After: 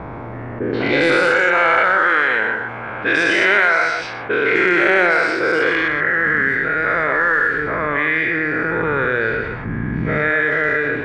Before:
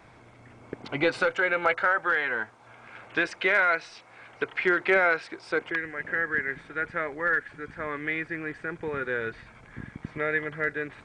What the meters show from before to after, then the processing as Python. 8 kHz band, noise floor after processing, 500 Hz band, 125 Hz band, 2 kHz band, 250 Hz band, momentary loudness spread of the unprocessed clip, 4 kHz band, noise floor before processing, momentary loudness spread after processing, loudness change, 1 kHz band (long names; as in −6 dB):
can't be measured, −29 dBFS, +10.5 dB, +15.0 dB, +12.0 dB, +12.5 dB, 17 LU, +12.5 dB, −53 dBFS, 10 LU, +11.0 dB, +11.5 dB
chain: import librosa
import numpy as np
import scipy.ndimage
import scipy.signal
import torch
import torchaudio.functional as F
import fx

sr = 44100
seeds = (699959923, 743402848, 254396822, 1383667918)

y = fx.spec_dilate(x, sr, span_ms=240)
y = fx.env_lowpass(y, sr, base_hz=1100.0, full_db=-15.5)
y = y + 10.0 ** (-9.5 / 20.0) * np.pad(y, (int(128 * sr / 1000.0), 0))[:len(y)]
y = fx.env_flatten(y, sr, amount_pct=50)
y = y * 10.0 ** (1.0 / 20.0)